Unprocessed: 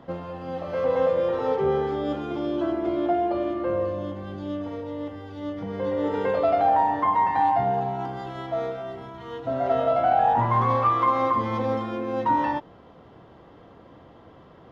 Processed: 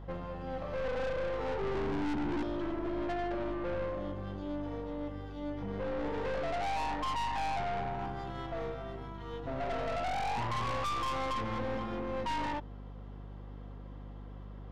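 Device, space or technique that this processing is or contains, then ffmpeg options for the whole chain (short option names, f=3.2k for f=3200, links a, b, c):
valve amplifier with mains hum: -filter_complex "[0:a]bandreject=f=650:w=16,asettb=1/sr,asplit=3[a][b][c];[a]atrim=end=1.754[d];[b]atrim=start=1.75:end=2.43,asetpts=PTS-STARTPTS,afade=t=in:d=0.004:c=qsin,afade=t=out:st=0.676:d=0.004:c=qsin,lowshelf=f=410:t=q:w=3:g=10[e];[c]atrim=start=2.426[f];[d][e]acrossfade=d=0.004:c1=hsin:c2=qsin[g];[g][f]acrossfade=d=0.004:c1=qsin:c2=hsin,aeval=exprs='(tanh(28.2*val(0)+0.55)-tanh(0.55))/28.2':c=same,aeval=exprs='val(0)+0.00891*(sin(2*PI*50*n/s)+sin(2*PI*2*50*n/s)/2+sin(2*PI*3*50*n/s)/3+sin(2*PI*4*50*n/s)/4+sin(2*PI*5*50*n/s)/5)':c=same,volume=-3.5dB"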